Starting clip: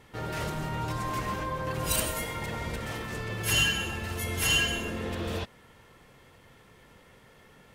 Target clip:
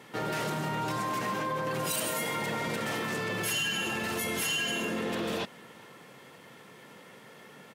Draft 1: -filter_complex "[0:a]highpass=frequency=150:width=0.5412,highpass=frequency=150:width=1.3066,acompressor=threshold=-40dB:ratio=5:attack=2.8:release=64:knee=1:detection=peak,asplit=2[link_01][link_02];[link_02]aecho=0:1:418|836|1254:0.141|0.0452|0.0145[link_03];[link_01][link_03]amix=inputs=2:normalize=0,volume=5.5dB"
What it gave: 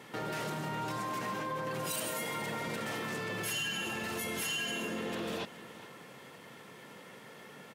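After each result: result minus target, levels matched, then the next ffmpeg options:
echo-to-direct +9.5 dB; downward compressor: peak gain reduction +5 dB
-filter_complex "[0:a]highpass=frequency=150:width=0.5412,highpass=frequency=150:width=1.3066,acompressor=threshold=-40dB:ratio=5:attack=2.8:release=64:knee=1:detection=peak,asplit=2[link_01][link_02];[link_02]aecho=0:1:418|836:0.0473|0.0151[link_03];[link_01][link_03]amix=inputs=2:normalize=0,volume=5.5dB"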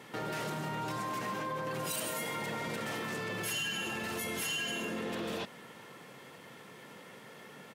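downward compressor: peak gain reduction +5 dB
-filter_complex "[0:a]highpass=frequency=150:width=0.5412,highpass=frequency=150:width=1.3066,acompressor=threshold=-34dB:ratio=5:attack=2.8:release=64:knee=1:detection=peak,asplit=2[link_01][link_02];[link_02]aecho=0:1:418|836:0.0473|0.0151[link_03];[link_01][link_03]amix=inputs=2:normalize=0,volume=5.5dB"

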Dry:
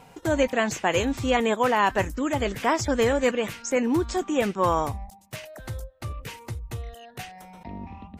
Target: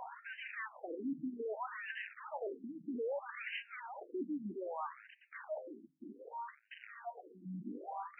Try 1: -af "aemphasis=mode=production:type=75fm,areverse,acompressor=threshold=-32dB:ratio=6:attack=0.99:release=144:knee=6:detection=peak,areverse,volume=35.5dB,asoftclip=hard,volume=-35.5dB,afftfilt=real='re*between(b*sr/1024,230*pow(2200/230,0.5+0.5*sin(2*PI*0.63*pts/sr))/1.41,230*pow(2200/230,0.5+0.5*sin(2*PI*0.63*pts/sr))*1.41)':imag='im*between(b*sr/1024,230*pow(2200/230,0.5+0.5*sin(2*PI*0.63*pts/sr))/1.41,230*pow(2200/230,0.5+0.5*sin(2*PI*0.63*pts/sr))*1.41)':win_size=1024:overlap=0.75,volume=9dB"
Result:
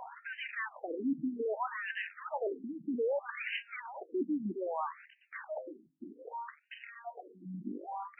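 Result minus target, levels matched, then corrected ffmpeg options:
gain into a clipping stage and back: distortion −6 dB
-af "aemphasis=mode=production:type=75fm,areverse,acompressor=threshold=-32dB:ratio=6:attack=0.99:release=144:knee=6:detection=peak,areverse,volume=43dB,asoftclip=hard,volume=-43dB,afftfilt=real='re*between(b*sr/1024,230*pow(2200/230,0.5+0.5*sin(2*PI*0.63*pts/sr))/1.41,230*pow(2200/230,0.5+0.5*sin(2*PI*0.63*pts/sr))*1.41)':imag='im*between(b*sr/1024,230*pow(2200/230,0.5+0.5*sin(2*PI*0.63*pts/sr))/1.41,230*pow(2200/230,0.5+0.5*sin(2*PI*0.63*pts/sr))*1.41)':win_size=1024:overlap=0.75,volume=9dB"

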